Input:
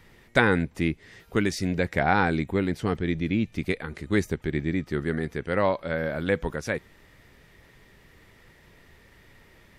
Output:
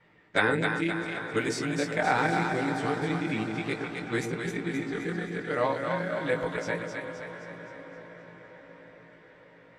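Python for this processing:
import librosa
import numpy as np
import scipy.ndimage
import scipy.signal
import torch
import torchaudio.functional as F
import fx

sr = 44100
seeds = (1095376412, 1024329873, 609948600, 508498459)

p1 = fx.frame_reverse(x, sr, frame_ms=36.0)
p2 = fx.highpass(p1, sr, hz=300.0, slope=6)
p3 = fx.peak_eq(p2, sr, hz=7900.0, db=6.5, octaves=0.33)
p4 = p3 + 0.37 * np.pad(p3, (int(6.6 * sr / 1000.0), 0))[:len(p3)]
p5 = p4 + fx.echo_diffused(p4, sr, ms=760, feedback_pct=54, wet_db=-12.0, dry=0)
p6 = fx.env_lowpass(p5, sr, base_hz=2300.0, full_db=-25.0)
y = fx.echo_split(p6, sr, split_hz=560.0, low_ms=122, high_ms=261, feedback_pct=52, wet_db=-4.5)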